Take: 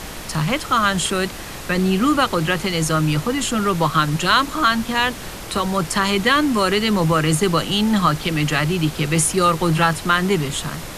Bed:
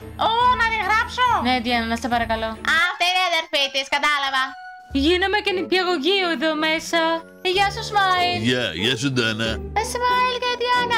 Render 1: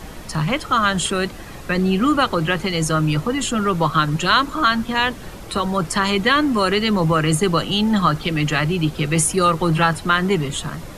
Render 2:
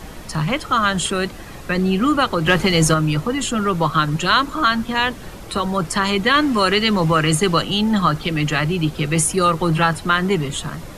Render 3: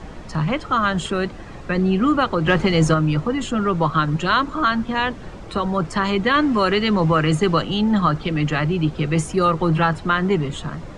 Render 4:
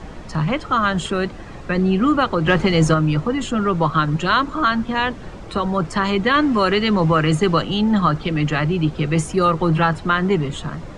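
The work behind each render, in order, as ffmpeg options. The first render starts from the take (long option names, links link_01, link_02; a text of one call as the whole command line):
ffmpeg -i in.wav -af "afftdn=noise_reduction=9:noise_floor=-32" out.wav
ffmpeg -i in.wav -filter_complex "[0:a]asettb=1/sr,asplit=3[link_01][link_02][link_03];[link_01]atrim=end=2.464[link_04];[link_02]atrim=start=2.46:end=2.94,asetpts=PTS-STARTPTS,afade=type=in:duration=0.004:curve=qsin,afade=type=out:start_time=0.476:duration=0.004:curve=qsin,acontrast=49[link_05];[link_03]atrim=start=2.936[link_06];[link_04][link_05]acrossfade=duration=0.004:curve1=hsin:curve2=qsin[link_07];[link_07][link_06]acrossfade=duration=0.004:curve1=qsin:curve2=hsin,asettb=1/sr,asplit=3[link_08][link_09][link_10];[link_08]atrim=end=6.344[link_11];[link_09]atrim=start=6.34:end=7.62,asetpts=PTS-STARTPTS,afade=type=in:duration=0.004:curve=qsin,afade=type=out:start_time=1.276:duration=0.004:curve=qsin,equalizer=frequency=3300:width_type=o:width=3:gain=4[link_12];[link_10]atrim=start=7.616[link_13];[link_11][link_12]acrossfade=duration=0.004:curve1=hsin:curve2=qsin[link_14];[link_14][link_13]acrossfade=duration=0.004:curve1=qsin:curve2=hsin" out.wav
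ffmpeg -i in.wav -af "lowpass=frequency=8100:width=0.5412,lowpass=frequency=8100:width=1.3066,highshelf=frequency=2600:gain=-10" out.wav
ffmpeg -i in.wav -af "volume=1dB" out.wav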